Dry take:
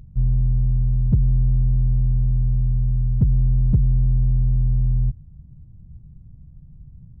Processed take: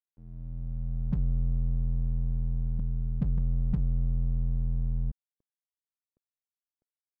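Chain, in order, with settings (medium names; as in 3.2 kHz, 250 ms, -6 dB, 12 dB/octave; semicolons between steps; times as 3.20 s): fade-in on the opening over 1.18 s; 2.79–3.38 s: steep low-pass 590 Hz 96 dB/octave; static phaser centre 360 Hz, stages 6; crossover distortion -35.5 dBFS; trim -5.5 dB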